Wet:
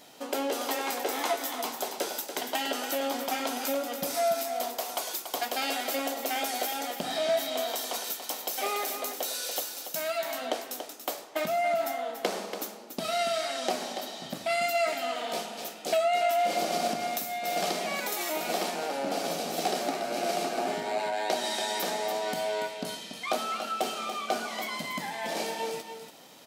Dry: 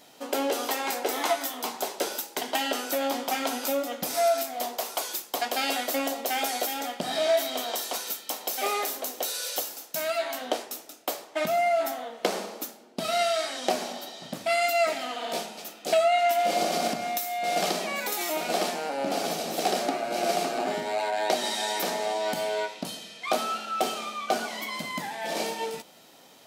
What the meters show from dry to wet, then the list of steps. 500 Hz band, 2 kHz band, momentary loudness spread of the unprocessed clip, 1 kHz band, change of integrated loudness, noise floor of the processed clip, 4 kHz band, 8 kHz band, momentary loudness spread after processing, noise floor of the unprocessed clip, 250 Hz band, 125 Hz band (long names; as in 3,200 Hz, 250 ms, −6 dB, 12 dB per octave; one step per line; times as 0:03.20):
−2.5 dB, −2.5 dB, 8 LU, −2.5 dB, −2.5 dB, −45 dBFS, −2.0 dB, −2.0 dB, 7 LU, −52 dBFS, −2.0 dB, −2.0 dB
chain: in parallel at 0 dB: downward compressor, threshold −37 dBFS, peak gain reduction 17 dB
on the sum: single-tap delay 285 ms −8.5 dB
level −5 dB